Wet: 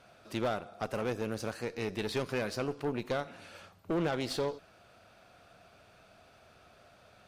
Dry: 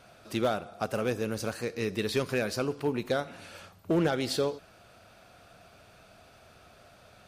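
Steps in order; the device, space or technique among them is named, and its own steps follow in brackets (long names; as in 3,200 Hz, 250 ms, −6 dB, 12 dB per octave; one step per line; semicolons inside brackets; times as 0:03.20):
tube preamp driven hard (tube saturation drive 25 dB, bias 0.6; low-shelf EQ 200 Hz −3 dB; high-shelf EQ 6,800 Hz −6.5 dB)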